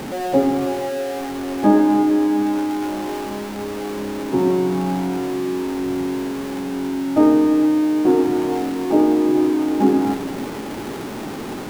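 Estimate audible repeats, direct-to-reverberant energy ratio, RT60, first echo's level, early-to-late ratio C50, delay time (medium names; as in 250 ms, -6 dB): no echo, 7.5 dB, 2.3 s, no echo, 9.0 dB, no echo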